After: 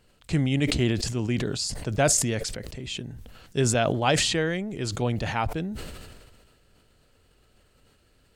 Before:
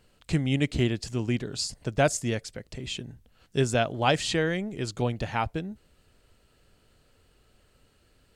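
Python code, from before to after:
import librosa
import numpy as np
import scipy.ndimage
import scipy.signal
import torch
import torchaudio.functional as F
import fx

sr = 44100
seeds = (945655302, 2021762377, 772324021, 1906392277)

y = fx.sustainer(x, sr, db_per_s=34.0)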